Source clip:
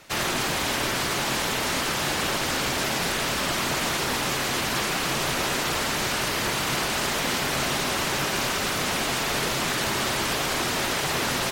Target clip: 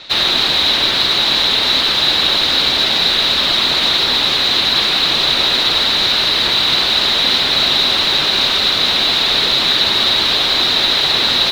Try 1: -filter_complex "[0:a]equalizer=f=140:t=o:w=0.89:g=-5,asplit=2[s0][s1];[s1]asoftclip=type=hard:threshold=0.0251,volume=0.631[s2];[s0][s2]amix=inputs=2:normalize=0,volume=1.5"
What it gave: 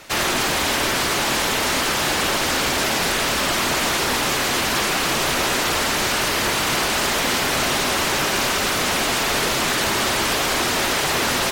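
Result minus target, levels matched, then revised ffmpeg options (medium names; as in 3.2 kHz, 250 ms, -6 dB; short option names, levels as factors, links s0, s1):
4 kHz band -5.0 dB
-filter_complex "[0:a]lowpass=f=3900:t=q:w=11,equalizer=f=140:t=o:w=0.89:g=-5,asplit=2[s0][s1];[s1]asoftclip=type=hard:threshold=0.0251,volume=0.631[s2];[s0][s2]amix=inputs=2:normalize=0,volume=1.5"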